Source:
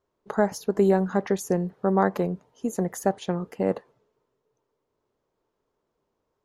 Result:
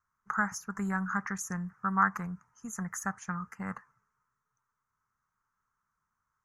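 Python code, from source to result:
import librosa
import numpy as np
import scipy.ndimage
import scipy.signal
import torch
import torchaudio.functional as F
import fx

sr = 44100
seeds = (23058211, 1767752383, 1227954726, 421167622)

y = fx.curve_eq(x, sr, hz=(110.0, 210.0, 330.0, 580.0, 1300.0, 2100.0, 3600.0, 6100.0, 13000.0), db=(0, -4, -21, -21, 14, 3, -22, 6, -4))
y = F.gain(torch.from_numpy(y), -5.0).numpy()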